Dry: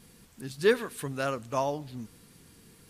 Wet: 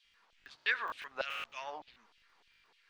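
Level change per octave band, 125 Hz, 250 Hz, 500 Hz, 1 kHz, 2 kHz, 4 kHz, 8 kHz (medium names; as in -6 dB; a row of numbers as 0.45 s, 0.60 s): under -30 dB, -27.5 dB, -18.5 dB, -7.5 dB, 0.0 dB, -2.0 dB, -18.0 dB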